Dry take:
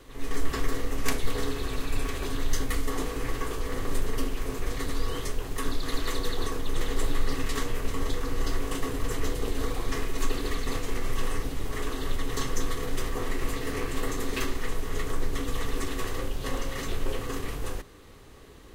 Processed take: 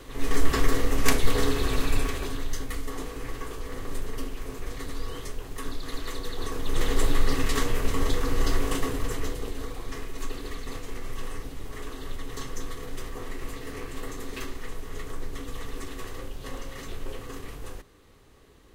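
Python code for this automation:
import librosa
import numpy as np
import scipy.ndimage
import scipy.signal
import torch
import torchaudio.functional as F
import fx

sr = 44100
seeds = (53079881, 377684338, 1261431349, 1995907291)

y = fx.gain(x, sr, db=fx.line((1.87, 5.5), (2.54, -4.5), (6.3, -4.5), (6.85, 4.0), (8.69, 4.0), (9.67, -6.0)))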